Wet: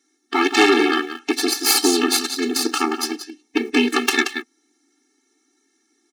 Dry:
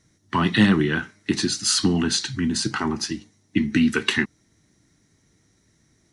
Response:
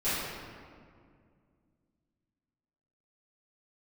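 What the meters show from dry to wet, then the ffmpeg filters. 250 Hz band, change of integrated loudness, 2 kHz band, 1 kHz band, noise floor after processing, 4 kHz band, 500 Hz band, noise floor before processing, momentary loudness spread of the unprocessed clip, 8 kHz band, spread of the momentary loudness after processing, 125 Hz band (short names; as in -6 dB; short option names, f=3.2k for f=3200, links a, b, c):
0.0 dB, +3.5 dB, +4.5 dB, +7.5 dB, -67 dBFS, +4.0 dB, +8.5 dB, -64 dBFS, 10 LU, +4.5 dB, 11 LU, under -25 dB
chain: -filter_complex "[0:a]aecho=1:1:179:0.422,aeval=exprs='0.708*(cos(1*acos(clip(val(0)/0.708,-1,1)))-cos(1*PI/2))+0.282*(cos(6*acos(clip(val(0)/0.708,-1,1)))-cos(6*PI/2))':c=same,lowshelf=f=270:g=-5,asplit=2[a][b];[b]aeval=exprs='val(0)*gte(abs(val(0)),0.0531)':c=same,volume=-11.5dB[c];[a][c]amix=inputs=2:normalize=0,afftfilt=real='re*eq(mod(floor(b*sr/1024/230),2),1)':imag='im*eq(mod(floor(b*sr/1024/230),2),1)':win_size=1024:overlap=0.75,volume=2.5dB"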